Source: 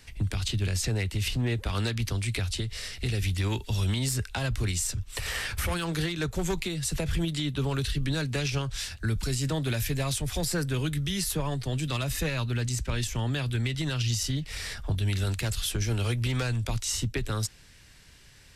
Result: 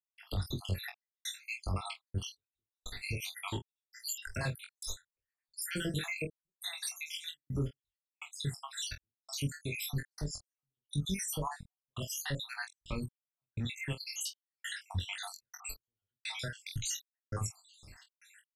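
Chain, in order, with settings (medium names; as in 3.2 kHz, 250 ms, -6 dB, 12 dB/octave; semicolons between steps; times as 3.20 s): random holes in the spectrogram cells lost 78%; peak limiter -30 dBFS, peak gain reduction 10.5 dB; trance gate ".xxxx..xxxx.x.." 84 bpm -60 dB; on a send: early reflections 21 ms -4 dB, 46 ms -12.5 dB; on the sum: trim +2 dB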